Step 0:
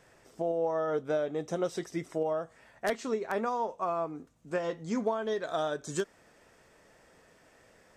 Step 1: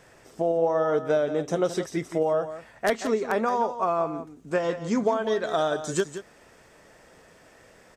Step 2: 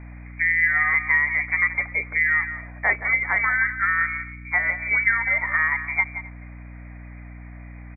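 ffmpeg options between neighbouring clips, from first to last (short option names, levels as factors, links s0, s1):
-af "aecho=1:1:174:0.266,volume=2.11"
-af "aecho=1:1:259:0.0708,lowpass=f=2100:t=q:w=0.5098,lowpass=f=2100:t=q:w=0.6013,lowpass=f=2100:t=q:w=0.9,lowpass=f=2100:t=q:w=2.563,afreqshift=-2500,aeval=exprs='val(0)+0.00891*(sin(2*PI*60*n/s)+sin(2*PI*2*60*n/s)/2+sin(2*PI*3*60*n/s)/3+sin(2*PI*4*60*n/s)/4+sin(2*PI*5*60*n/s)/5)':c=same,volume=1.41"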